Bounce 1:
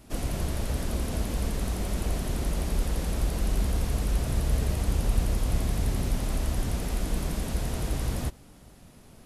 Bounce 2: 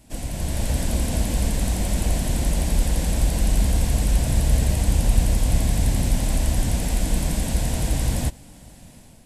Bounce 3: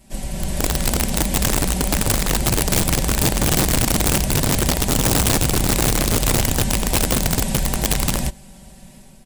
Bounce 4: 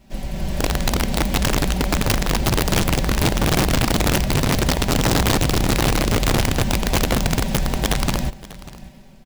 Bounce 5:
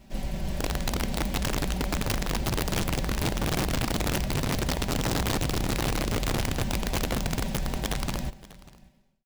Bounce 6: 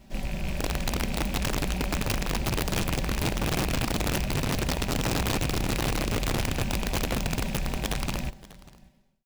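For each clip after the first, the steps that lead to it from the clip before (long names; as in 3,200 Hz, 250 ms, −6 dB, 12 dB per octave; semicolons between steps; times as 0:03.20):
automatic gain control gain up to 7 dB; thirty-one-band graphic EQ 400 Hz −9 dB, 1,250 Hz −11 dB, 8,000 Hz +7 dB
comb filter 5.2 ms, depth 86%; wrap-around overflow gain 12.5 dB
running median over 5 samples; single-tap delay 592 ms −18.5 dB
fade-out on the ending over 2.49 s; reversed playback; downward compressor 5 to 1, threshold −26 dBFS, peak gain reduction 10 dB; reversed playback
loose part that buzzes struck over −31 dBFS, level −27 dBFS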